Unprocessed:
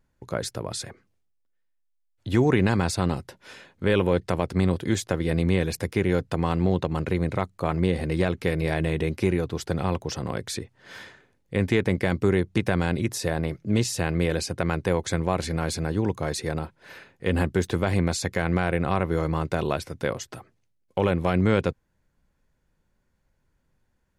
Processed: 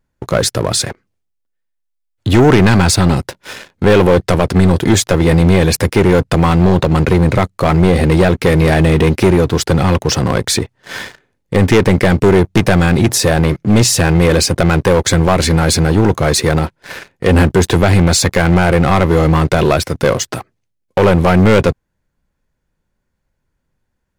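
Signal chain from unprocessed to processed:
leveller curve on the samples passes 3
level +6.5 dB

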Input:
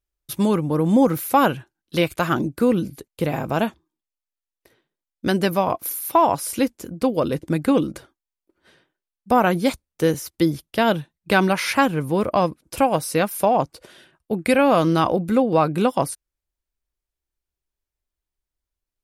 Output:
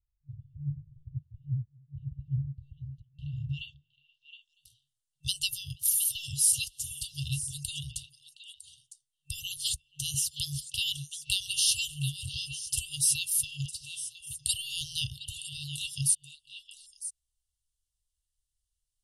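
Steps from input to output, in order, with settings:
low-pass filter sweep 110 Hz → 9,400 Hz, 0:01.96–0:04.57
brick-wall band-stop 150–2,700 Hz
echo through a band-pass that steps 239 ms, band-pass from 400 Hz, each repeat 1.4 octaves, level −2.5 dB
level +1 dB

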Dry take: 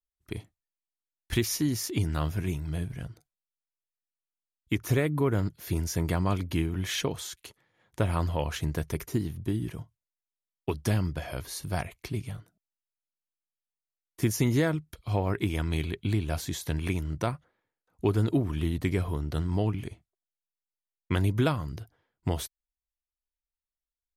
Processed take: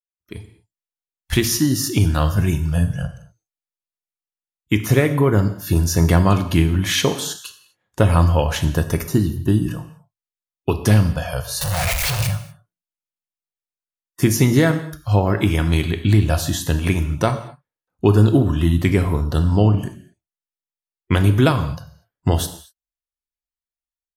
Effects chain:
0:11.61–0:12.27: sign of each sample alone
noise reduction from a noise print of the clip's start 18 dB
automatic gain control gain up to 16 dB
reverb whose tail is shaped and stops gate 270 ms falling, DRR 7.5 dB
level −2.5 dB

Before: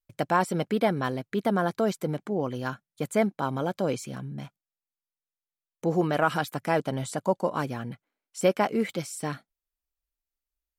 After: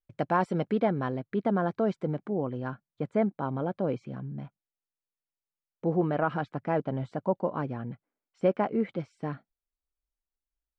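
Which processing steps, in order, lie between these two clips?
head-to-tape spacing loss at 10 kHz 26 dB, from 0:00.80 at 10 kHz 35 dB, from 0:02.30 at 10 kHz 45 dB

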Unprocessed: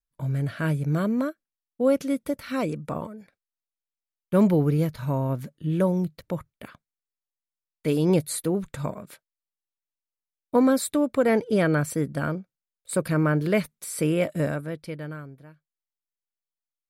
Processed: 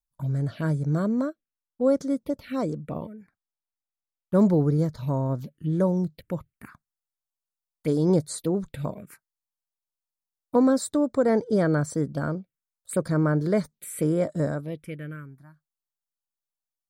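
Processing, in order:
phaser swept by the level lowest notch 370 Hz, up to 2,700 Hz, full sweep at −23.5 dBFS
0:01.26–0:04.79: one half of a high-frequency compander decoder only

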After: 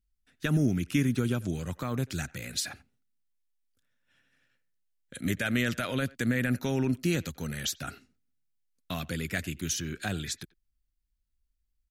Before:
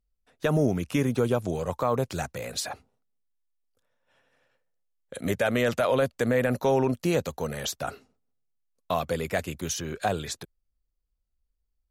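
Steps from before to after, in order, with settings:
flat-topped bell 690 Hz −13.5 dB
far-end echo of a speakerphone 90 ms, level −22 dB

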